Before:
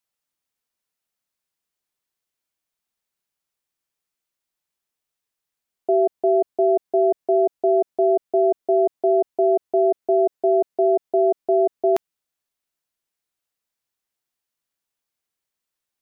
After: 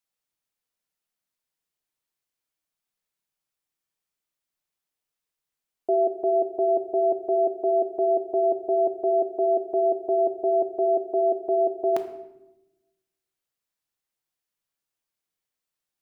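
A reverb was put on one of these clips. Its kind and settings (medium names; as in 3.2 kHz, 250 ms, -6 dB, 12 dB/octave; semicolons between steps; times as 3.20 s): simulated room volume 370 m³, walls mixed, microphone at 0.55 m; trim -3.5 dB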